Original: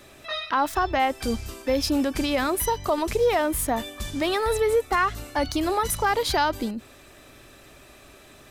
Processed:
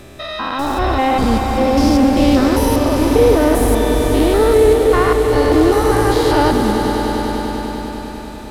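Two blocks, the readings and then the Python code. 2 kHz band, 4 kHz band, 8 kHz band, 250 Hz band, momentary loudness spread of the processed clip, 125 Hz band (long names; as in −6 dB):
+5.5 dB, +6.0 dB, +4.0 dB, +14.5 dB, 12 LU, +16.5 dB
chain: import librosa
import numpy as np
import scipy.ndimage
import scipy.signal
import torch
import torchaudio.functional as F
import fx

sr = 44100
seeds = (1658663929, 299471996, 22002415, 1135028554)

p1 = fx.spec_steps(x, sr, hold_ms=200)
p2 = fx.low_shelf(p1, sr, hz=490.0, db=10.0)
p3 = p2 + fx.echo_swell(p2, sr, ms=99, loudest=5, wet_db=-11.0, dry=0)
p4 = fx.doppler_dist(p3, sr, depth_ms=0.12)
y = p4 * librosa.db_to_amplitude(7.5)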